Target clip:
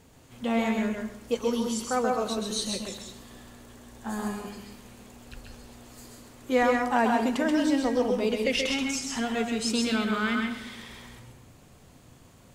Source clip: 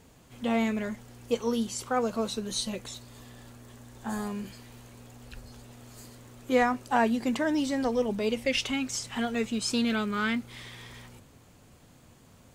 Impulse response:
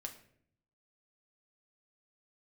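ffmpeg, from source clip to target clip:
-filter_complex "[0:a]asplit=2[a][b];[1:a]atrim=start_sample=2205,asetrate=26460,aresample=44100,adelay=130[c];[b][c]afir=irnorm=-1:irlink=0,volume=-2dB[d];[a][d]amix=inputs=2:normalize=0"

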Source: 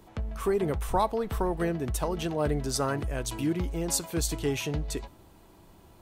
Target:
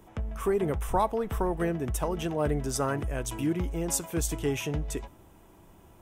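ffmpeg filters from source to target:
-af "equalizer=f=4.3k:w=4.3:g=-13"

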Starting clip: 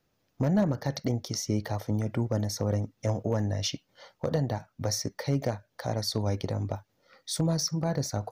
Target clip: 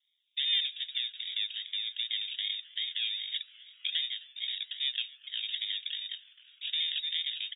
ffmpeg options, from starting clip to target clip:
-filter_complex "[0:a]highpass=190,lowshelf=f=250:g=3,asplit=2[a][b];[b]asoftclip=type=tanh:threshold=-23dB,volume=-9.5dB[c];[a][c]amix=inputs=2:normalize=0,acrusher=samples=32:mix=1:aa=0.000001:lfo=1:lforange=19.2:lforate=2.3,atempo=1.1,asuperstop=centerf=3000:order=8:qfactor=1.2,asplit=6[d][e][f][g][h][i];[e]adelay=259,afreqshift=140,volume=-22dB[j];[f]adelay=518,afreqshift=280,volume=-26dB[k];[g]adelay=777,afreqshift=420,volume=-30dB[l];[h]adelay=1036,afreqshift=560,volume=-34dB[m];[i]adelay=1295,afreqshift=700,volume=-38.1dB[n];[d][j][k][l][m][n]amix=inputs=6:normalize=0,lowpass=f=3.2k:t=q:w=0.5098,lowpass=f=3.2k:t=q:w=0.6013,lowpass=f=3.2k:t=q:w=0.9,lowpass=f=3.2k:t=q:w=2.563,afreqshift=-3800,volume=-6dB"

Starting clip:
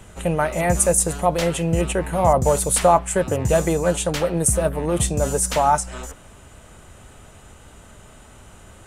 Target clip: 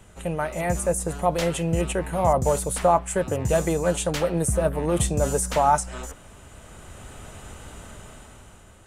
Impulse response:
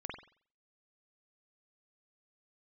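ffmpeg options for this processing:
-filter_complex "[0:a]acrossover=split=2000[a][b];[b]alimiter=limit=-14.5dB:level=0:latency=1:release=367[c];[a][c]amix=inputs=2:normalize=0,dynaudnorm=f=270:g=7:m=11dB,volume=-6.5dB"

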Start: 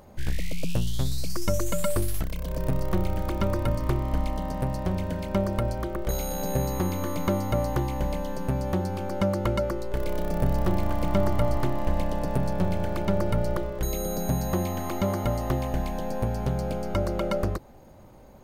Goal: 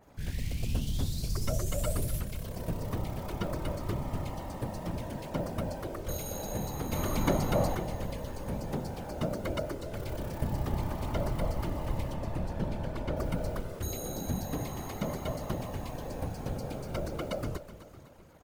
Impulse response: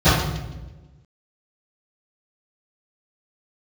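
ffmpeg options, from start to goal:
-filter_complex "[0:a]asettb=1/sr,asplit=3[a][b][c];[a]atrim=end=6.924[d];[b]atrim=start=6.92:end=7.75,asetpts=PTS-STARTPTS,afade=t=in:d=0.004:c=qsin,afade=t=out:st=0.826:d=0.004:c=qsin,acontrast=79[e];[c]atrim=start=7.746[f];[d][e]acrossfade=d=0.004:c1=hsin:c2=qsin[g];[g][f]acrossfade=d=0.004:c1=qsin:c2=hsin,acrusher=bits=7:mix=0:aa=0.5,asettb=1/sr,asplit=3[h][i][j];[h]atrim=end=12.144[k];[i]atrim=start=12.14:end=13.17,asetpts=PTS-STARTPTS,afade=t=in:d=0.004:c=qsin,afade=t=out:st=1.026:d=0.004:c=qsin,lowpass=f=3.9k:p=1[l];[j]atrim=start=13.166[m];[k][l]acrossfade=d=0.004:c1=hsin:c2=qsin[n];[n][m]acrossfade=d=0.004:c1=qsin:c2=hsin,aecho=1:1:252|504|756|1008|1260:0.224|0.112|0.056|0.028|0.014,afftfilt=real='hypot(re,im)*cos(2*PI*random(0))':imag='hypot(re,im)*sin(2*PI*random(1))':win_size=512:overlap=0.75,adynamicequalizer=threshold=0.00158:dfrequency=2200:dqfactor=0.7:tfrequency=2200:tqfactor=0.7:attack=5:release=100:ratio=0.375:range=2:mode=boostabove:tftype=highshelf,volume=-2.5dB"

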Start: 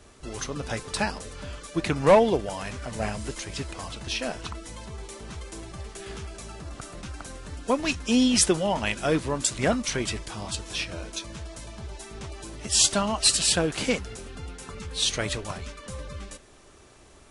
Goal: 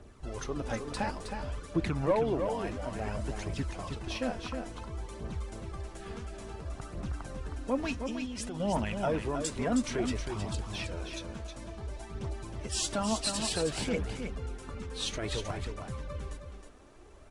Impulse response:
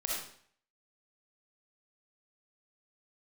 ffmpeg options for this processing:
-filter_complex "[0:a]highshelf=f=2.1k:g=-11,alimiter=limit=-21dB:level=0:latency=1:release=45,asettb=1/sr,asplit=3[a][b][c];[a]atrim=end=7.974[d];[b]atrim=start=7.97:end=8.6,asetpts=PTS-STARTPTS,afade=t=in:d=0.004:c=qsin,afade=t=out:st=0.626:d=0.004:c=qsin,acompressor=threshold=-35dB:ratio=3[e];[c]atrim=start=8.596[f];[d][e]acrossfade=d=0.004:c1=hsin:c2=qsin[g];[g][f]acrossfade=d=0.004:c1=qsin:c2=hsin,aphaser=in_gain=1:out_gain=1:delay=4.5:decay=0.45:speed=0.57:type=triangular,aecho=1:1:316:0.473,volume=-2.5dB"

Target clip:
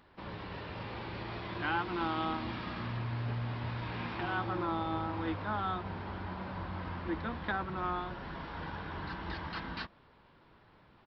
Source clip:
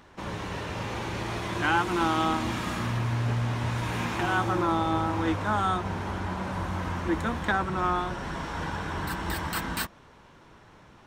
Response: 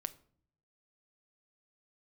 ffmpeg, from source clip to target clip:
-af "aresample=11025,aresample=44100,volume=-8.5dB"

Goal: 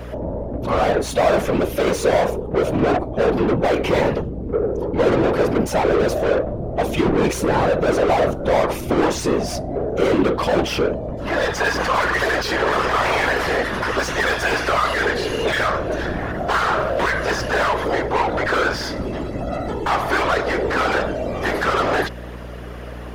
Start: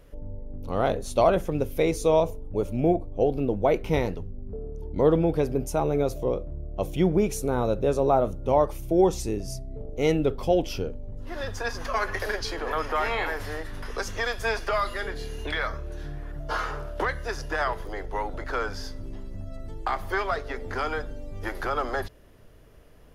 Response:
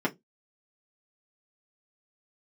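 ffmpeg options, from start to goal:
-filter_complex "[0:a]asplit=2[a][b];[b]highpass=f=720:p=1,volume=35dB,asoftclip=type=tanh:threshold=-8dB[c];[a][c]amix=inputs=2:normalize=0,lowpass=f=1.7k:p=1,volume=-6dB,afftfilt=real='hypot(re,im)*cos(2*PI*random(0))':imag='hypot(re,im)*sin(2*PI*random(1))':win_size=512:overlap=0.75,aeval=exprs='val(0)+0.0141*(sin(2*PI*60*n/s)+sin(2*PI*2*60*n/s)/2+sin(2*PI*3*60*n/s)/3+sin(2*PI*4*60*n/s)/4+sin(2*PI*5*60*n/s)/5)':c=same,volume=4dB"

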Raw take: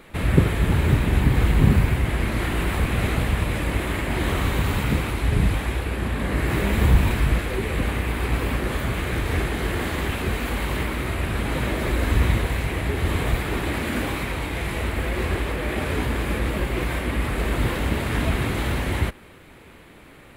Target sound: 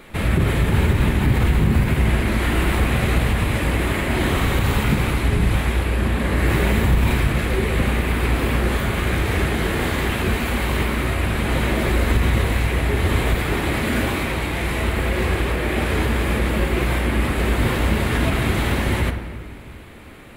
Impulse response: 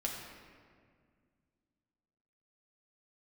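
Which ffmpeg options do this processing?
-filter_complex "[0:a]bandreject=f=65.74:t=h:w=4,bandreject=f=131.48:t=h:w=4,bandreject=f=197.22:t=h:w=4,bandreject=f=262.96:t=h:w=4,bandreject=f=328.7:t=h:w=4,bandreject=f=394.44:t=h:w=4,bandreject=f=460.18:t=h:w=4,bandreject=f=525.92:t=h:w=4,bandreject=f=591.66:t=h:w=4,bandreject=f=657.4:t=h:w=4,bandreject=f=723.14:t=h:w=4,bandreject=f=788.88:t=h:w=4,bandreject=f=854.62:t=h:w=4,bandreject=f=920.36:t=h:w=4,bandreject=f=986.1:t=h:w=4,bandreject=f=1.05184k:t=h:w=4,bandreject=f=1.11758k:t=h:w=4,bandreject=f=1.18332k:t=h:w=4,bandreject=f=1.24906k:t=h:w=4,bandreject=f=1.3148k:t=h:w=4,bandreject=f=1.38054k:t=h:w=4,bandreject=f=1.44628k:t=h:w=4,bandreject=f=1.51202k:t=h:w=4,bandreject=f=1.57776k:t=h:w=4,bandreject=f=1.6435k:t=h:w=4,bandreject=f=1.70924k:t=h:w=4,bandreject=f=1.77498k:t=h:w=4,bandreject=f=1.84072k:t=h:w=4,bandreject=f=1.90646k:t=h:w=4,alimiter=limit=-13dB:level=0:latency=1:release=57,asplit=2[a][b];[1:a]atrim=start_sample=2205[c];[b][c]afir=irnorm=-1:irlink=0,volume=-3.5dB[d];[a][d]amix=inputs=2:normalize=0"

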